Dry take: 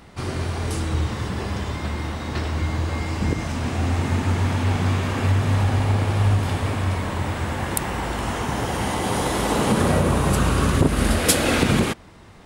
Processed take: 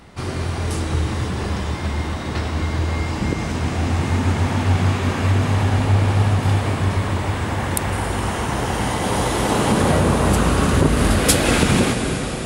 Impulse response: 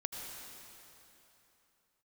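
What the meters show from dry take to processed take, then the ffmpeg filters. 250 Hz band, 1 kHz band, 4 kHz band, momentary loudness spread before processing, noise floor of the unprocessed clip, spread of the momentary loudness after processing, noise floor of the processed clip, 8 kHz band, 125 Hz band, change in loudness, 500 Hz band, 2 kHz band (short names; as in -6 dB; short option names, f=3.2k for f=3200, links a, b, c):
+3.0 dB, +3.0 dB, +3.0 dB, 8 LU, -45 dBFS, 8 LU, -26 dBFS, +2.5 dB, +2.5 dB, +2.5 dB, +3.0 dB, +3.0 dB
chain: -filter_complex "[0:a]asplit=2[a][b];[1:a]atrim=start_sample=2205,asetrate=22491,aresample=44100[c];[b][c]afir=irnorm=-1:irlink=0,volume=-3dB[d];[a][d]amix=inputs=2:normalize=0,volume=-3.5dB"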